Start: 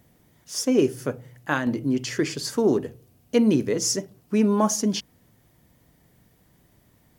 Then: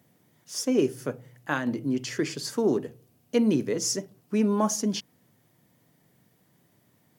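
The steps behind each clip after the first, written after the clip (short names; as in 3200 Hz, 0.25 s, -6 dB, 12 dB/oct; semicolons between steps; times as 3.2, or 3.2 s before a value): HPF 110 Hz 24 dB/oct; gain -3.5 dB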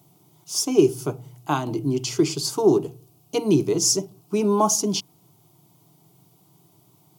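fixed phaser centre 350 Hz, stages 8; gain +9 dB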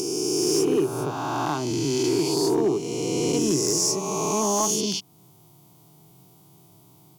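spectral swells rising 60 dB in 2.63 s; compressor 1.5:1, threshold -33 dBFS, peak gain reduction 9 dB; hard clip -15.5 dBFS, distortion -24 dB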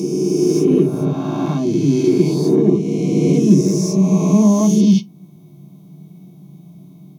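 reverb RT60 0.15 s, pre-delay 3 ms, DRR -1.5 dB; gain -7 dB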